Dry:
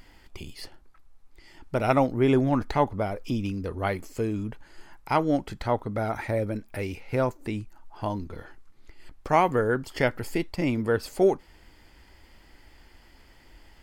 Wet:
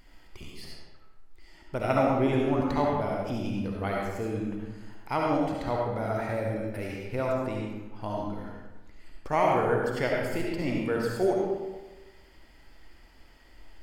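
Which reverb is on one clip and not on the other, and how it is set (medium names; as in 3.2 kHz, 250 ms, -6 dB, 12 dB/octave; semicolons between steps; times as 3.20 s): algorithmic reverb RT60 1.2 s, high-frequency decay 0.7×, pre-delay 30 ms, DRR -2.5 dB; trim -6 dB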